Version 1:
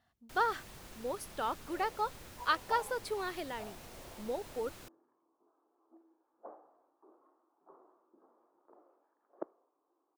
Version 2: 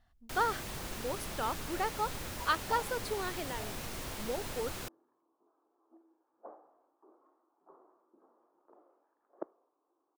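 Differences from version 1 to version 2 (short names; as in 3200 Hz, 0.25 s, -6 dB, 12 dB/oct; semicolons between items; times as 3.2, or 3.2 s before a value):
speech: remove HPF 120 Hz; first sound +10.5 dB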